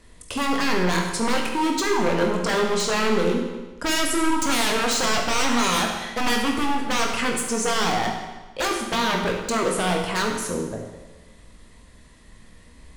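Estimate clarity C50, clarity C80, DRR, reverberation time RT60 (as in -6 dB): 4.0 dB, 6.0 dB, 0.5 dB, 1.2 s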